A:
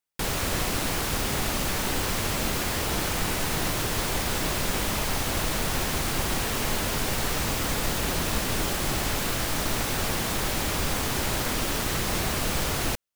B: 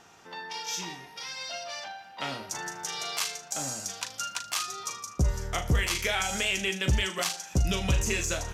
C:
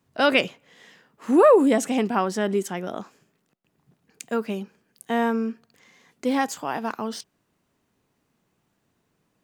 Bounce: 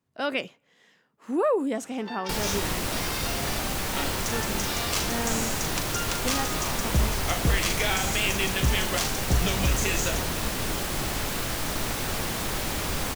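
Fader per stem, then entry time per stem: −2.0, +1.0, −9.0 decibels; 2.10, 1.75, 0.00 seconds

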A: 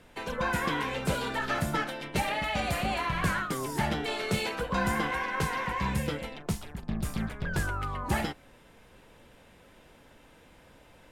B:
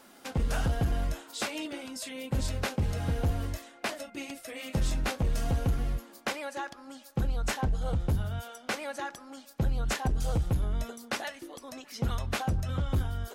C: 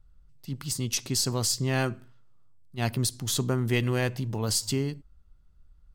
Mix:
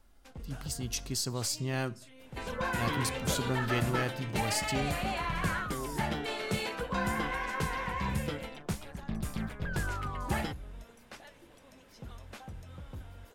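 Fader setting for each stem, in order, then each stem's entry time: −3.5, −16.0, −6.5 decibels; 2.20, 0.00, 0.00 seconds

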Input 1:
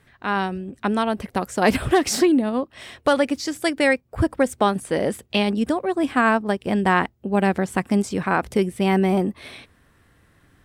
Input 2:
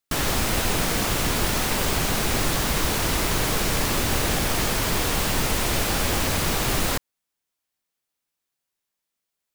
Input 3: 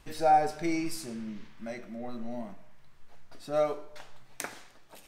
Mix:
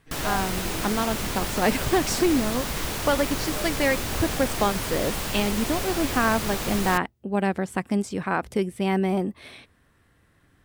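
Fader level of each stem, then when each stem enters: −4.5, −6.0, −10.5 decibels; 0.00, 0.00, 0.00 seconds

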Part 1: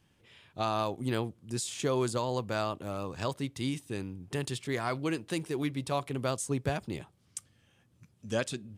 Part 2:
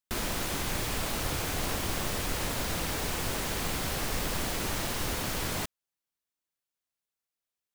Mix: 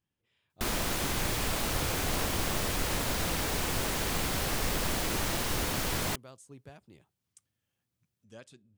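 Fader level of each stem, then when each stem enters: −19.0, +1.0 decibels; 0.00, 0.50 seconds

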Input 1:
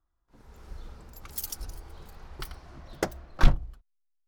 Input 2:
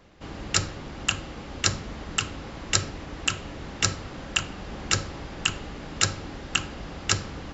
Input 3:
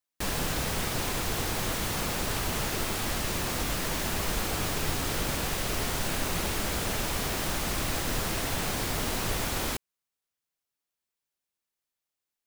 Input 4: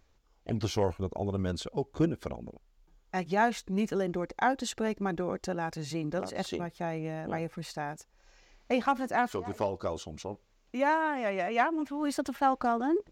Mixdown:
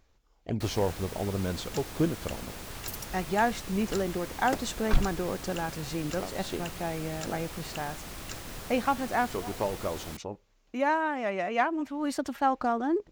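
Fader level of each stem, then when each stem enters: −5.5, −19.5, −11.5, +0.5 decibels; 1.50, 1.20, 0.40, 0.00 seconds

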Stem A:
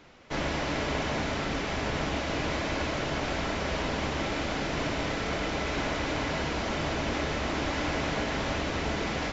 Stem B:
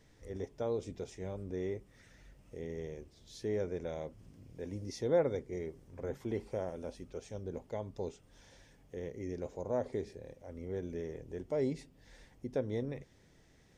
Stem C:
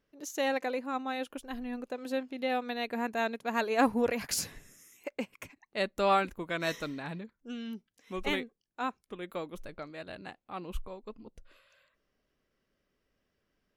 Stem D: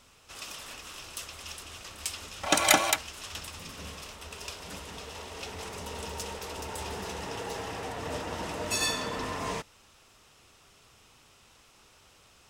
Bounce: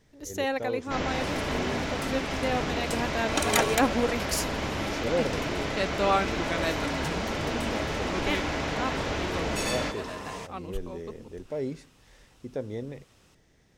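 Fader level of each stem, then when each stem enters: −0.5, +1.0, +1.5, −4.5 decibels; 0.60, 0.00, 0.00, 0.85 seconds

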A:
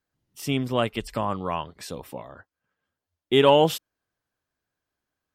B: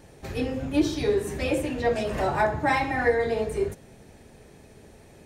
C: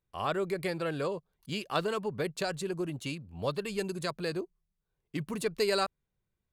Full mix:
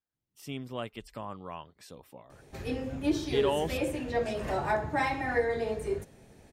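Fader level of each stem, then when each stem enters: −13.0 dB, −5.5 dB, muted; 0.00 s, 2.30 s, muted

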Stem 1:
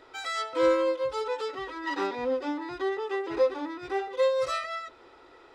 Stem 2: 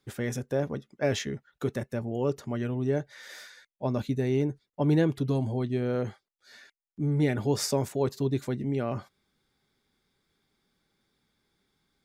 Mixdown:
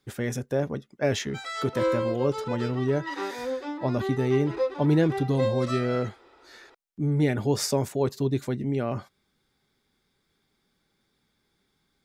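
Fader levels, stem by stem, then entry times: −2.5, +2.0 decibels; 1.20, 0.00 seconds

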